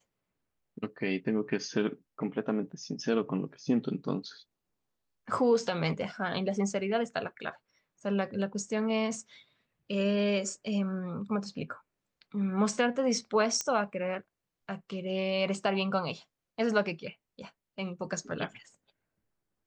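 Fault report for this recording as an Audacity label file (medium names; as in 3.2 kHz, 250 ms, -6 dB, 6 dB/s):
13.610000	13.610000	pop -17 dBFS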